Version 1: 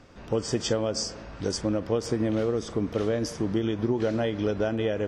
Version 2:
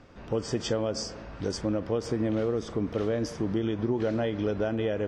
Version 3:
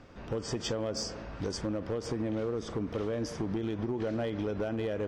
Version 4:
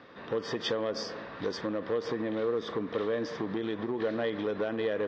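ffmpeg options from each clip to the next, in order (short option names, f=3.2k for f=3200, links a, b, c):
-filter_complex "[0:a]highshelf=f=6k:g=-10,asplit=2[a][b];[b]alimiter=limit=-21dB:level=0:latency=1,volume=-3dB[c];[a][c]amix=inputs=2:normalize=0,volume=-5dB"
-af "acompressor=threshold=-28dB:ratio=8,volume=26dB,asoftclip=hard,volume=-26dB"
-af "highpass=180,equalizer=f=470:t=q:w=4:g=5,equalizer=f=1.1k:t=q:w=4:g=7,equalizer=f=1.8k:t=q:w=4:g=9,equalizer=f=3.7k:t=q:w=4:g=9,lowpass=f=4.9k:w=0.5412,lowpass=f=4.9k:w=1.3066"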